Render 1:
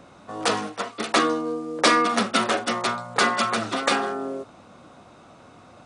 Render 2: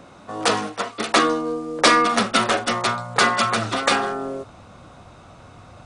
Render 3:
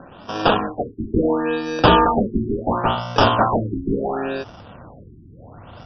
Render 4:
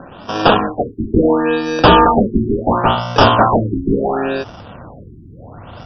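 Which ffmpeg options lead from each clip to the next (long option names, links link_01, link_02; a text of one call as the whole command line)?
ffmpeg -i in.wav -af "asubboost=boost=5:cutoff=110,volume=3.5dB" out.wav
ffmpeg -i in.wav -af "acrusher=samples=21:mix=1:aa=0.000001,acontrast=38,afftfilt=real='re*lt(b*sr/1024,380*pow(6400/380,0.5+0.5*sin(2*PI*0.72*pts/sr)))':imag='im*lt(b*sr/1024,380*pow(6400/380,0.5+0.5*sin(2*PI*0.72*pts/sr)))':win_size=1024:overlap=0.75,volume=-1.5dB" out.wav
ffmpeg -i in.wav -af "apsyclip=8dB,volume=-2dB" out.wav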